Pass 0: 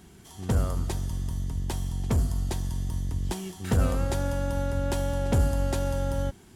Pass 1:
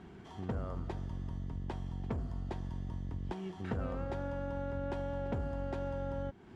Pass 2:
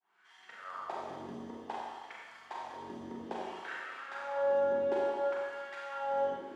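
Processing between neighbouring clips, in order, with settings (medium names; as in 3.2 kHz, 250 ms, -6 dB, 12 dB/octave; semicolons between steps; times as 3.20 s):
Bessel low-pass 1.7 kHz, order 2; bass shelf 120 Hz -8.5 dB; compression 2.5:1, threshold -42 dBFS, peak gain reduction 13 dB; trim +3 dB
fade-in on the opening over 0.69 s; LFO high-pass sine 0.58 Hz 330–1900 Hz; Schroeder reverb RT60 1.5 s, combs from 30 ms, DRR -4.5 dB; trim -1 dB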